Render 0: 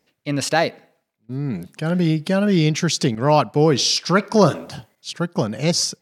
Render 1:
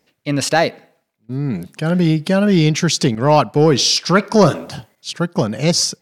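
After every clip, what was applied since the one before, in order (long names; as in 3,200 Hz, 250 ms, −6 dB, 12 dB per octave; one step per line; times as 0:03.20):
soft clipping −4 dBFS, distortion −24 dB
level +4 dB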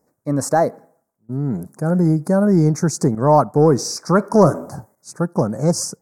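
Chebyshev band-stop filter 1,100–7,800 Hz, order 2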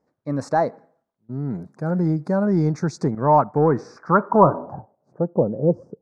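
dynamic equaliser 910 Hz, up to +5 dB, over −34 dBFS, Q 4.8
low-pass filter sweep 3,400 Hz → 460 Hz, 0:02.97–0:05.56
level −5 dB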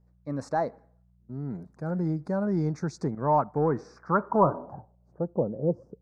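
hum with harmonics 60 Hz, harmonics 3, −55 dBFS −4 dB per octave
level −7.5 dB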